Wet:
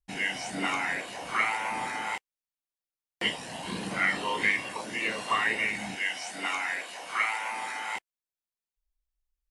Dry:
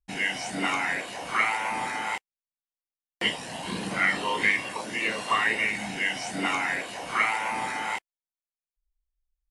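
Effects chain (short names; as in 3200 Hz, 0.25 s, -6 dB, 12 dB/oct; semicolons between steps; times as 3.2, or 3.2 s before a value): 5.95–7.95 HPF 780 Hz 6 dB/oct; gain -2.5 dB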